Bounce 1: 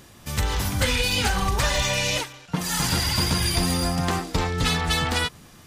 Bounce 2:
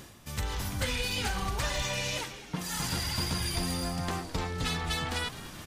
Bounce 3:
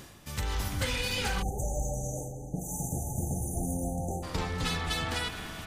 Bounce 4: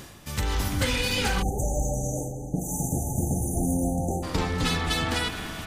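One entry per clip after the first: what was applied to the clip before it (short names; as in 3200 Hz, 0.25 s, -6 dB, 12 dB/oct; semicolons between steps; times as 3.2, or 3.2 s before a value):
reverse; upward compressor, threshold -24 dBFS; reverse; frequency-shifting echo 0.21 s, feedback 62%, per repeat -90 Hz, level -15.5 dB; gain -9 dB
spring tank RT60 3.8 s, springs 38/58 ms, chirp 45 ms, DRR 6 dB; spectral delete 1.42–4.23, 870–5900 Hz
dynamic EQ 280 Hz, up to +5 dB, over -48 dBFS, Q 1.7; gain +5 dB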